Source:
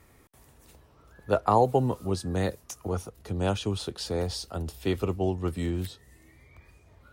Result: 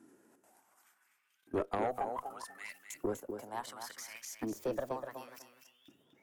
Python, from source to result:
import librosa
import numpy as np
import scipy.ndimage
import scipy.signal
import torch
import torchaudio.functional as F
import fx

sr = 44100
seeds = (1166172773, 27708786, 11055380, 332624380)

p1 = fx.speed_glide(x, sr, from_pct=74, to_pct=155)
p2 = fx.graphic_eq(p1, sr, hz=(125, 250, 500, 1000, 4000), db=(8, 9, -7, -3, -9))
p3 = fx.level_steps(p2, sr, step_db=15)
p4 = fx.filter_lfo_highpass(p3, sr, shape='saw_up', hz=0.68, low_hz=300.0, high_hz=3600.0, q=4.0)
p5 = p4 + fx.echo_feedback(p4, sr, ms=247, feedback_pct=18, wet_db=-8.0, dry=0)
p6 = fx.cheby_harmonics(p5, sr, harmonics=(4, 5), levels_db=(-17, -17), full_scale_db=-16.0)
y = p6 * librosa.db_to_amplitude(-6.0)